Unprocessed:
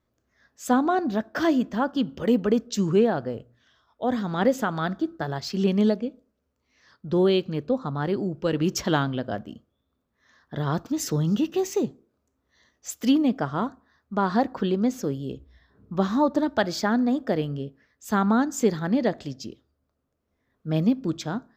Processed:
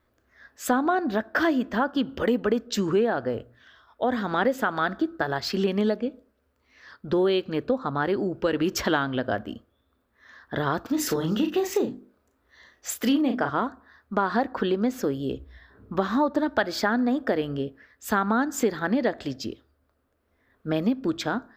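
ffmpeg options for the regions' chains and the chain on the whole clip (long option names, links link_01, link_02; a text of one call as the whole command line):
ffmpeg -i in.wav -filter_complex "[0:a]asettb=1/sr,asplit=3[link_01][link_02][link_03];[link_01]atrim=end=10.864[link_04];[link_02]atrim=start=10.86:end=13.5,asetpts=PTS-STARTPTS,afade=type=in:duration=0.004:curve=qsin,afade=type=out:start_time=2.636:duration=0.004:curve=qsin,bandreject=frequency=50:width_type=h:width=6,bandreject=frequency=100:width_type=h:width=6,bandreject=frequency=150:width_type=h:width=6,bandreject=frequency=200:width_type=h:width=6,bandreject=frequency=250:width_type=h:width=6,bandreject=frequency=300:width_type=h:width=6,bandreject=frequency=350:width_type=h:width=6,asplit=2[link_05][link_06];[link_06]adelay=36,volume=-6.5dB[link_07];[link_05][link_07]amix=inputs=2:normalize=0,atrim=end_sample=116424[link_08];[link_03]atrim=start=13.496[link_09];[link_04][link_08]acrossfade=duration=0.004:curve1=hsin:curve2=qsin[link_10];[link_10][link_09]acrossfade=duration=0.004:curve1=qsin:curve2=hsin,equalizer=frequency=160:width_type=o:width=0.67:gain=-11,equalizer=frequency=1600:width_type=o:width=0.67:gain=5,equalizer=frequency=6300:width_type=o:width=0.67:gain=-7,acompressor=threshold=-30dB:ratio=2.5,volume=7dB" out.wav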